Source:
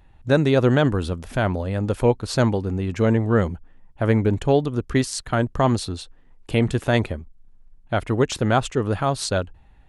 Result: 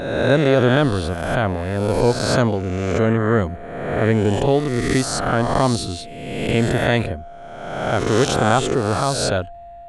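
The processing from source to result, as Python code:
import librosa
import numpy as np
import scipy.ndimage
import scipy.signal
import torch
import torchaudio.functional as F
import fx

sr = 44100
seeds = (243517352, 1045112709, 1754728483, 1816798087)

y = fx.spec_swells(x, sr, rise_s=1.28)
y = y + 10.0 ** (-36.0 / 20.0) * np.sin(2.0 * np.pi * 690.0 * np.arange(len(y)) / sr)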